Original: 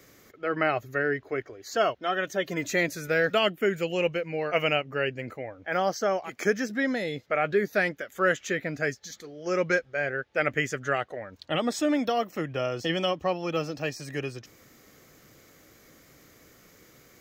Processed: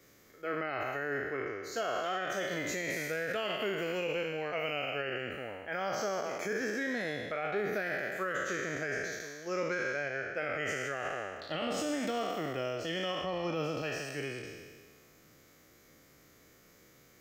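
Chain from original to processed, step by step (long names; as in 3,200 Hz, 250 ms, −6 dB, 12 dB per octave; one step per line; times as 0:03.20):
peak hold with a decay on every bin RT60 1.67 s
0:13.23–0:13.82: low-shelf EQ 480 Hz +6.5 dB
brickwall limiter −16.5 dBFS, peak gain reduction 8.5 dB
level −8.5 dB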